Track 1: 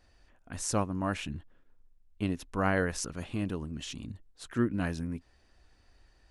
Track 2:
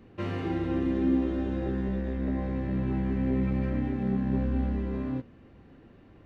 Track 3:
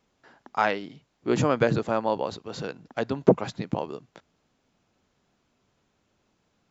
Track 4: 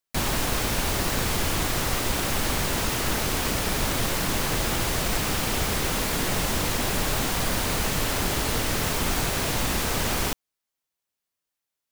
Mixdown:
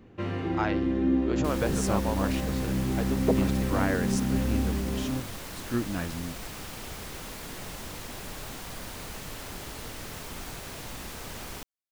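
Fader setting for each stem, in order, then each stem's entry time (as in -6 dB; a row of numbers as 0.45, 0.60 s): -1.0, +0.5, -7.0, -14.0 dB; 1.15, 0.00, 0.00, 1.30 s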